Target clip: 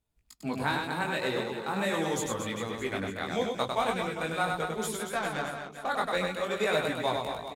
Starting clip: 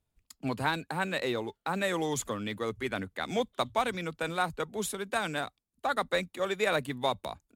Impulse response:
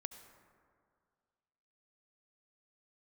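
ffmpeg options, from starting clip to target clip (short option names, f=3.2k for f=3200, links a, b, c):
-filter_complex "[0:a]flanger=delay=17.5:depth=6:speed=0.43,asettb=1/sr,asplit=3[a][b][c];[a]atrim=end=5.064[d];[b]atrim=start=5.06:end=5.86,asetpts=PTS-STARTPTS,afade=t=in:d=0.004:c=qsin,afade=t=out:st=0.796:d=0.004:c=qsin,adynamicsmooth=sensitivity=5.5:basefreq=1.4k[e];[c]atrim=start=5.856[f];[d][e]acrossfade=d=0.004:c1=hsin:c2=qsin[g];[g][f]acrossfade=d=0.004:c1=qsin:c2=hsin,aecho=1:1:100|230|399|618.7|904.3:0.631|0.398|0.251|0.158|0.1,volume=2dB"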